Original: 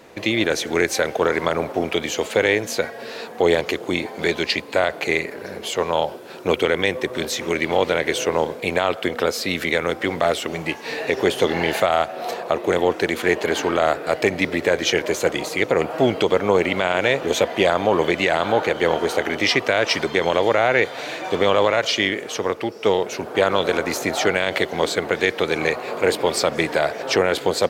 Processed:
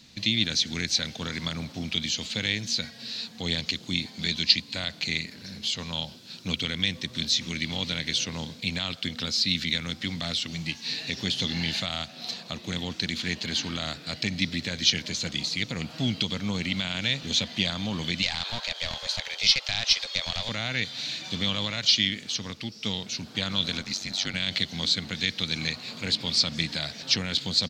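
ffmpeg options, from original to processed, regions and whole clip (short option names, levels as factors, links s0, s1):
-filter_complex "[0:a]asettb=1/sr,asplit=3[s0][s1][s2];[s0]atrim=end=18.224[s3];[s1]atrim=start=18.22:end=20.49,asetpts=PTS-STARTPTS,afade=t=in:d=0.004:c=qsin,afade=t=out:st=2.266:d=0.004:c=qsin,highpass=f=300:w=0.5412,highpass=f=300:w=1.3066,afreqshift=130,aeval=exprs='clip(val(0),-1,0.15)':c=same[s4];[s2]atrim=start=20.486[s5];[s3][s4]acrossfade=d=0.004:c1=hsin:c2=qsin[s6];[s6][s5]acrossfade=d=0.004:c1=qsin:c2=hsin,asettb=1/sr,asplit=3[s7][s8][s9];[s7]atrim=end=23.824[s10];[s8]atrim=start=23.82:end=24.34,asetpts=PTS-STARTPTS,afade=t=in:d=0.004:c=qsin,afade=t=out:st=0.516:d=0.004:c=qsin,highpass=f=180:p=1,aeval=exprs='val(0)*sin(2*PI*48*n/s)':c=same[s11];[s9]atrim=start=24.336[s12];[s10][s11]acrossfade=d=0.004:c1=hsin:c2=qsin[s13];[s13][s12]acrossfade=d=0.004:c1=qsin:c2=hsin,acrossover=split=6400[s14][s15];[s15]acompressor=threshold=0.00447:ratio=4:attack=1:release=60[s16];[s14][s16]amix=inputs=2:normalize=0,firequalizer=gain_entry='entry(220,0);entry(380,-23);entry(4100,9);entry(10000,-8)':delay=0.05:min_phase=1,volume=0.891"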